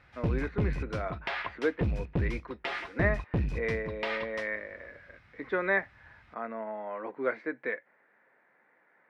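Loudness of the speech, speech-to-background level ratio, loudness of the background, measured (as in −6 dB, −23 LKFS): −34.5 LKFS, 0.0 dB, −34.5 LKFS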